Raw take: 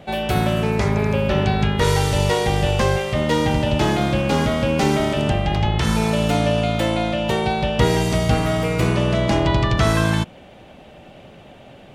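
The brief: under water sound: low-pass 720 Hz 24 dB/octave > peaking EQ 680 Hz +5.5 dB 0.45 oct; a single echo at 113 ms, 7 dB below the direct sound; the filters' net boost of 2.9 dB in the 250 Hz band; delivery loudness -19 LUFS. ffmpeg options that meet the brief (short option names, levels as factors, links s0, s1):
-af "lowpass=f=720:w=0.5412,lowpass=f=720:w=1.3066,equalizer=f=250:t=o:g=4,equalizer=f=680:t=o:w=0.45:g=5.5,aecho=1:1:113:0.447,volume=0.891"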